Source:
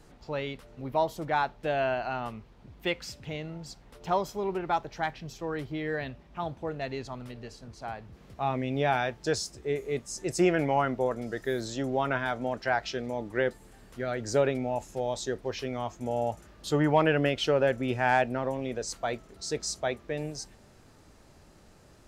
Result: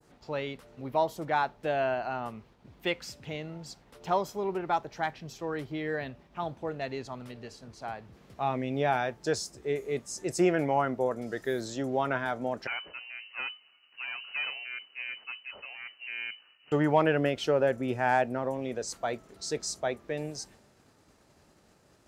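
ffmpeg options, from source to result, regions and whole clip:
-filter_complex "[0:a]asettb=1/sr,asplit=3[s0][s1][s2];[s0]atrim=end=12.674[s3];[s1]atrim=start=12.67:end=16.72,asetpts=PTS-STARTPTS,afade=t=in:d=0.004:c=qsin,afade=t=out:st=4.046:d=0.004:c=qsin,aeval=exprs='(tanh(20*val(0)+0.75)-tanh(0.75))/20':c=same,lowpass=f=2600:t=q:w=0.5098,lowpass=f=2600:t=q:w=0.6013,lowpass=f=2600:t=q:w=0.9,lowpass=f=2600:t=q:w=2.563,afreqshift=-3000[s4];[s2]atrim=start=16.716[s5];[s3][s4]acrossfade=d=0.004:c1=hsin:c2=qsin[s6];[s6][s5]acrossfade=d=0.004:c1=qsin:c2=hsin,agate=range=0.0224:threshold=0.00282:ratio=3:detection=peak,highpass=f=130:p=1,adynamicequalizer=threshold=0.00501:dfrequency=3300:dqfactor=0.74:tfrequency=3300:tqfactor=0.74:attack=5:release=100:ratio=0.375:range=3.5:mode=cutabove:tftype=bell"

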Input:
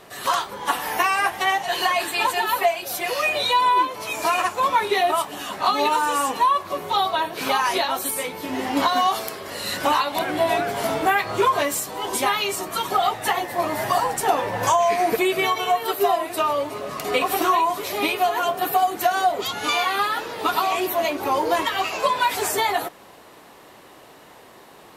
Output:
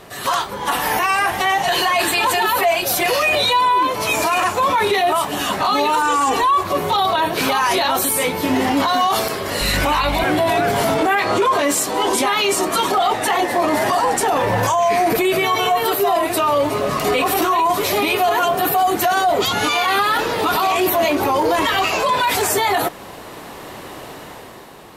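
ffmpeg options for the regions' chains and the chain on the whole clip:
-filter_complex "[0:a]asettb=1/sr,asplit=3[s0][s1][s2];[s0]atrim=end=6.024[s3];[s1]atrim=start=6.02:end=6.64,asetpts=PTS-STARTPTS,afade=t=in:d=0.004:c=qsin,afade=t=out:st=0.616:d=0.004:c=qsin,acrossover=split=7400[s4][s5];[s5]acompressor=threshold=0.00501:ratio=4:attack=1:release=60[s6];[s4][s6]amix=inputs=2:normalize=0,equalizer=f=7300:w=6:g=5.5,aecho=1:1:2.6:0.6,atrim=end_sample=27342[s7];[s2]atrim=start=6.636[s8];[s3][s7]acrossfade=d=0.004:c1=hsin:c2=qsin[s9];[s9][s8]acrossfade=d=0.004:c1=qsin:c2=hsin,asettb=1/sr,asplit=3[s10][s11][s12];[s10]atrim=end=9.614[s13];[s11]atrim=start=9.61:end=10.24,asetpts=PTS-STARTPTS,afade=t=in:d=0.004:c=qsin,afade=t=out:st=0.626:d=0.004:c=qsin,equalizer=f=2300:w=4.2:g=8,aeval=exprs='val(0)+0.0158*(sin(2*PI*50*n/s)+sin(2*PI*2*50*n/s)/2+sin(2*PI*3*50*n/s)/3+sin(2*PI*4*50*n/s)/4+sin(2*PI*5*50*n/s)/5)':c=same[s14];[s12]atrim=start=10.236[s15];[s13][s14]acrossfade=d=0.004:c1=hsin:c2=qsin[s16];[s16][s15]acrossfade=d=0.004:c1=qsin:c2=hsin,asettb=1/sr,asplit=3[s17][s18][s19];[s17]atrim=end=10.974[s20];[s18]atrim=start=10.97:end=14.28,asetpts=PTS-STARTPTS,afade=t=in:d=0.004:c=qsin,afade=t=out:st=3.306:d=0.004:c=qsin,lowpass=11000,lowshelf=f=190:t=q:w=1.5:g=-7.5[s21];[s19]atrim=start=14.276[s22];[s20][s21]acrossfade=d=0.004:c1=hsin:c2=qsin[s23];[s23][s22]acrossfade=d=0.004:c1=qsin:c2=hsin,lowshelf=f=170:g=7.5,dynaudnorm=f=120:g=13:m=2.51,alimiter=limit=0.2:level=0:latency=1:release=16,volume=1.68"

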